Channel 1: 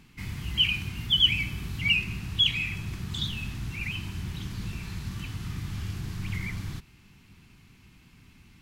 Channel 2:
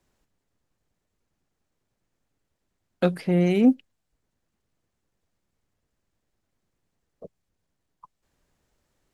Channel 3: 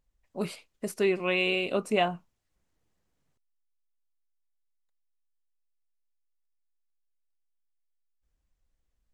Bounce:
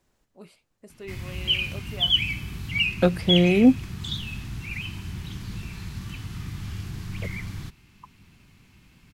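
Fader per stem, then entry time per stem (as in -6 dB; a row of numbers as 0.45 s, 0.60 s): 0.0 dB, +2.0 dB, -15.0 dB; 0.90 s, 0.00 s, 0.00 s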